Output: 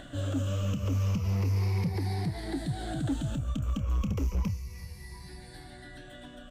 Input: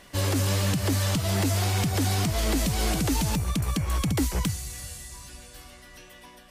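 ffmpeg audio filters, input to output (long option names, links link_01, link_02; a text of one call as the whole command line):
ffmpeg -i in.wav -filter_complex "[0:a]afftfilt=real='re*pow(10,15/40*sin(2*PI*(0.83*log(max(b,1)*sr/1024/100)/log(2)-(-0.32)*(pts-256)/sr)))':imag='im*pow(10,15/40*sin(2*PI*(0.83*log(max(b,1)*sr/1024/100)/log(2)-(-0.32)*(pts-256)/sr)))':win_size=1024:overlap=0.75,firequalizer=gain_entry='entry(150,0);entry(640,-7);entry(9600,-18)':delay=0.05:min_phase=1,acompressor=mode=upward:threshold=-29dB:ratio=2.5,volume=18.5dB,asoftclip=hard,volume=-18.5dB,asplit=2[link_01][link_02];[link_02]adelay=29,volume=-12dB[link_03];[link_01][link_03]amix=inputs=2:normalize=0,volume=-6dB" out.wav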